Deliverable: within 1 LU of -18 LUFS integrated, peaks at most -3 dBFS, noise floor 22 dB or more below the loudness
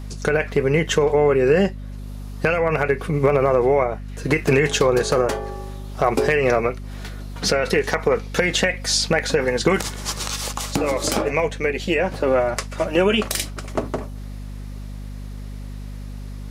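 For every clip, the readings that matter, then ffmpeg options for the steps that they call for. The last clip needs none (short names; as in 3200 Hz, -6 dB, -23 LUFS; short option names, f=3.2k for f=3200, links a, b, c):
hum 50 Hz; harmonics up to 250 Hz; hum level -30 dBFS; loudness -20.5 LUFS; peak -4.5 dBFS; loudness target -18.0 LUFS
-> -af "bandreject=f=50:t=h:w=6,bandreject=f=100:t=h:w=6,bandreject=f=150:t=h:w=6,bandreject=f=200:t=h:w=6,bandreject=f=250:t=h:w=6"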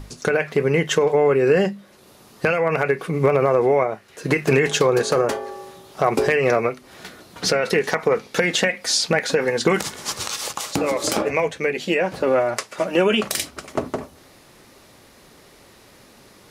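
hum none; loudness -20.5 LUFS; peak -4.5 dBFS; loudness target -18.0 LUFS
-> -af "volume=2.5dB,alimiter=limit=-3dB:level=0:latency=1"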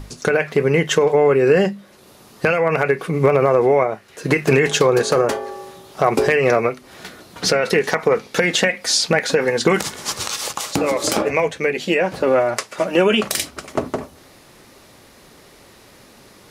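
loudness -18.0 LUFS; peak -3.0 dBFS; noise floor -48 dBFS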